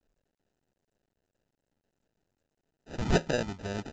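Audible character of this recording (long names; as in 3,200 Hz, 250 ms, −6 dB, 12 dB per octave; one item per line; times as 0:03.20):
phaser sweep stages 12, 2.2 Hz, lowest notch 490–1,200 Hz
aliases and images of a low sample rate 1,100 Hz, jitter 0%
mu-law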